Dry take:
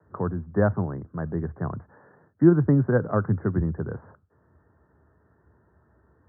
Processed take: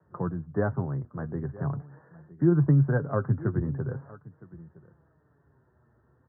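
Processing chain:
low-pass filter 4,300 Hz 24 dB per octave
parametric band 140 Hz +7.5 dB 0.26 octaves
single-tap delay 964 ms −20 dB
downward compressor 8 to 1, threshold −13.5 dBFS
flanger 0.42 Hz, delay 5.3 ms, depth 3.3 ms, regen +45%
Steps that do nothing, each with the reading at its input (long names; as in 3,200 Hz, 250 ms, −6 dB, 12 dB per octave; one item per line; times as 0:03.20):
low-pass filter 4,300 Hz: nothing at its input above 1,600 Hz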